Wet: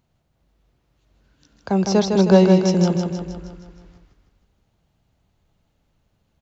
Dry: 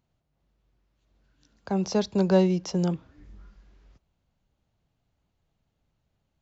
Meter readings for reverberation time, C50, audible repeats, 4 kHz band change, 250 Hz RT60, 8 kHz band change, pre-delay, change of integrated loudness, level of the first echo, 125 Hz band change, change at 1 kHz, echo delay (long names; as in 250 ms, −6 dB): no reverb audible, no reverb audible, 6, +8.5 dB, no reverb audible, can't be measured, no reverb audible, +8.0 dB, −5.0 dB, +8.5 dB, +8.5 dB, 157 ms